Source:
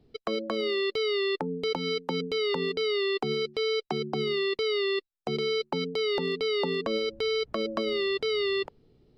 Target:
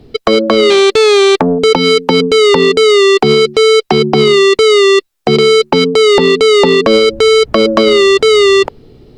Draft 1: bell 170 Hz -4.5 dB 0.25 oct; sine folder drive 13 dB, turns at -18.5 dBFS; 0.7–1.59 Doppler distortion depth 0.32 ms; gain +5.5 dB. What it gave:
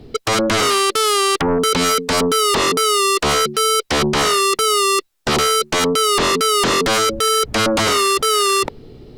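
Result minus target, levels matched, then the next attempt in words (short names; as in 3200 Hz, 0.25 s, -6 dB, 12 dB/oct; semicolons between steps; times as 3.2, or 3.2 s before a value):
sine folder: distortion +24 dB
bell 170 Hz -4.5 dB 0.25 oct; sine folder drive 13 dB, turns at -7 dBFS; 0.7–1.59 Doppler distortion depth 0.32 ms; gain +5.5 dB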